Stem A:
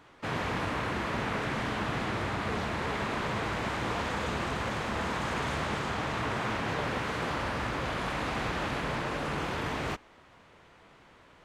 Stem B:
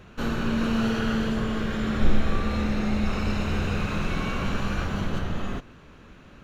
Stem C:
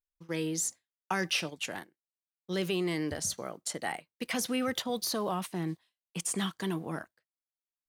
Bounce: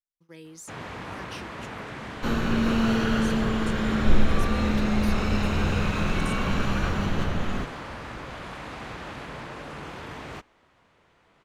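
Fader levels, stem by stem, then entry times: -5.5, +1.5, -12.5 dB; 0.45, 2.05, 0.00 s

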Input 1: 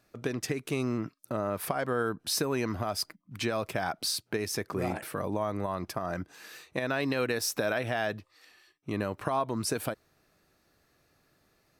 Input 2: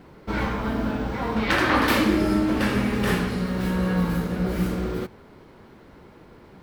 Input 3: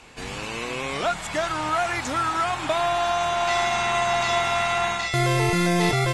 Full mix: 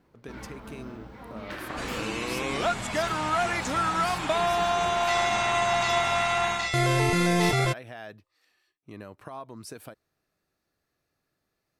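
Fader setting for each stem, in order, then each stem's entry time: -11.0, -17.0, -2.0 dB; 0.00, 0.00, 1.60 s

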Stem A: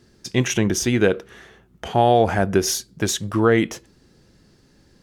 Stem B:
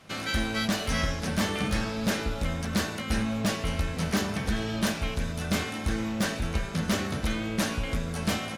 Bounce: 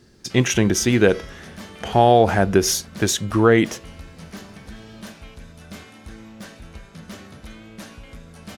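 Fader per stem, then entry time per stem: +2.0, -11.0 dB; 0.00, 0.20 s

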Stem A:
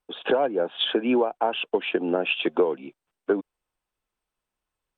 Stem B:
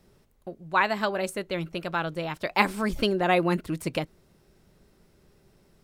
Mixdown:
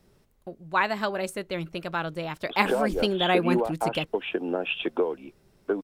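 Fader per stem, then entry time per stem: -4.0, -1.0 dB; 2.40, 0.00 s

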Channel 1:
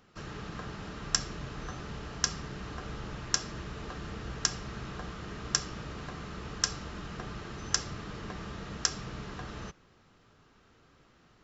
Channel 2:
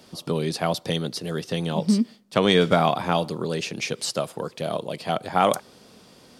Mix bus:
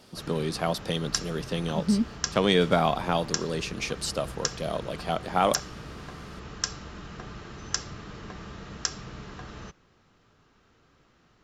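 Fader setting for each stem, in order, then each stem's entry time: -0.5, -3.5 dB; 0.00, 0.00 s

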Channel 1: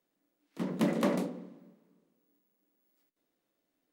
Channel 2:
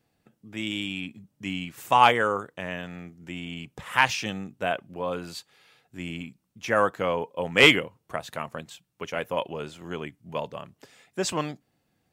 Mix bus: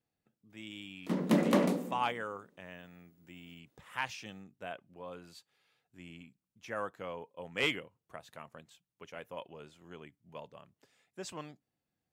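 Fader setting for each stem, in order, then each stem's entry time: +2.0, -15.5 dB; 0.50, 0.00 s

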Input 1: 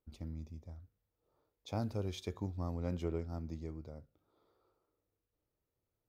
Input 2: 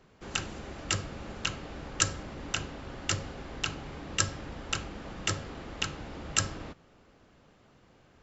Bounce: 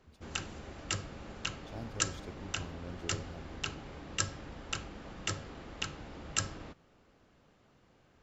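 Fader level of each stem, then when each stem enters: -7.5, -5.0 dB; 0.00, 0.00 s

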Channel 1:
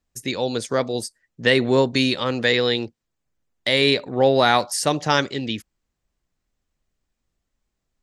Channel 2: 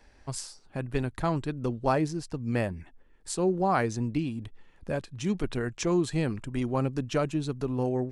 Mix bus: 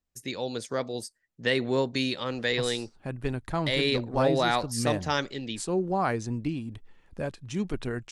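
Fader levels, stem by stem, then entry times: -8.5, -1.5 dB; 0.00, 2.30 s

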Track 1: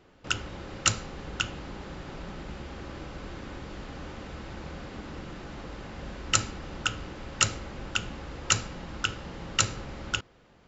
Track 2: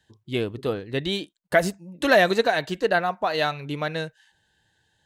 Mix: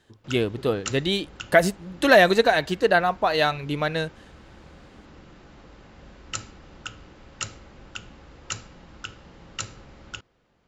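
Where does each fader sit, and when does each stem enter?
-8.0, +2.5 dB; 0.00, 0.00 s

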